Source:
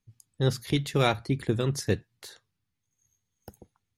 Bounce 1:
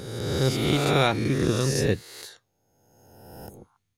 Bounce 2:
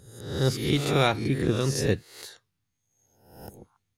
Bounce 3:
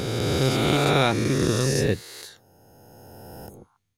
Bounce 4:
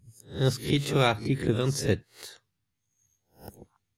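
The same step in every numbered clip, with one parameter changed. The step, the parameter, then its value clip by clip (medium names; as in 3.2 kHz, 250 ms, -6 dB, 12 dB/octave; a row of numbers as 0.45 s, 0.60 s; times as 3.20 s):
reverse spectral sustain, rising 60 dB in: 1.54 s, 0.71 s, 3.2 s, 0.33 s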